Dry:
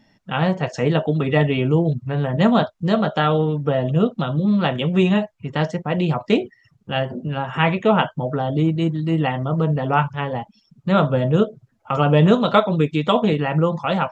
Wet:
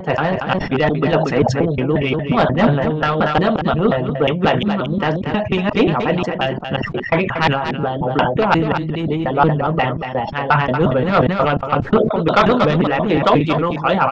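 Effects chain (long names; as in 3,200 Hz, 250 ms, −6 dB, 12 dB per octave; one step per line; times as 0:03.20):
slices reordered back to front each 178 ms, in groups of 4
low-pass filter 3,000 Hz 12 dB per octave
sine wavefolder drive 5 dB, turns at −1.5 dBFS
harmonic and percussive parts rebalanced harmonic −11 dB
on a send: single-tap delay 233 ms −8.5 dB
on the sum: level that may fall only so fast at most 58 dB per second
level −1 dB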